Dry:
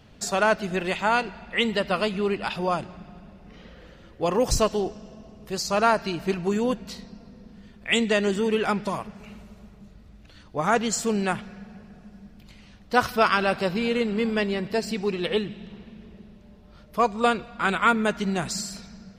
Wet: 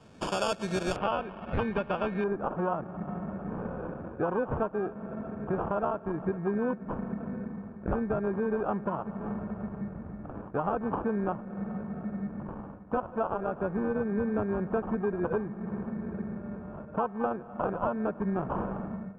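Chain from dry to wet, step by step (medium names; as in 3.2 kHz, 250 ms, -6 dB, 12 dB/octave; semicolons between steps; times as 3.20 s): level rider gain up to 14 dB; high-pass 120 Hz 12 dB/octave; sample-and-hold 22×; compression 4:1, threshold -29 dBFS, peak gain reduction 18 dB; low-pass 8.6 kHz 24 dB/octave, from 0.96 s 2.5 kHz, from 2.24 s 1.4 kHz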